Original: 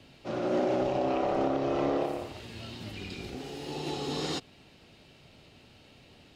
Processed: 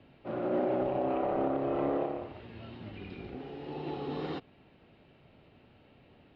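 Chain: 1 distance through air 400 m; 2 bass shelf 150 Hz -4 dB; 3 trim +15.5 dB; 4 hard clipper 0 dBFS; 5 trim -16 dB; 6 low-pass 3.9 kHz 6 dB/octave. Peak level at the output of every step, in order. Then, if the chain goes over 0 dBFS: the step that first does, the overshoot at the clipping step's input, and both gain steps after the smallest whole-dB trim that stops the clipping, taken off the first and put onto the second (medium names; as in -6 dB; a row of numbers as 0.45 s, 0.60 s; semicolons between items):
-18.0 dBFS, -18.5 dBFS, -3.0 dBFS, -3.0 dBFS, -19.0 dBFS, -19.0 dBFS; nothing clips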